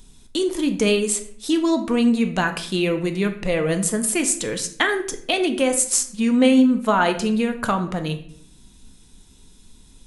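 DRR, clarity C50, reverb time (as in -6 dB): 6.5 dB, 11.0 dB, 0.60 s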